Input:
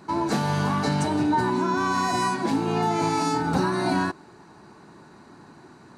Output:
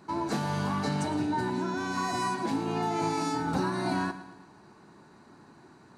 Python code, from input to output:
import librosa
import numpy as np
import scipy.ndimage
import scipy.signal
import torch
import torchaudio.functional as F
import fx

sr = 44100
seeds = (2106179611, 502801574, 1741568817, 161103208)

y = fx.peak_eq(x, sr, hz=1100.0, db=-12.5, octaves=0.22, at=(1.17, 1.97))
y = fx.echo_feedback(y, sr, ms=112, feedback_pct=51, wet_db=-14.5)
y = F.gain(torch.from_numpy(y), -6.0).numpy()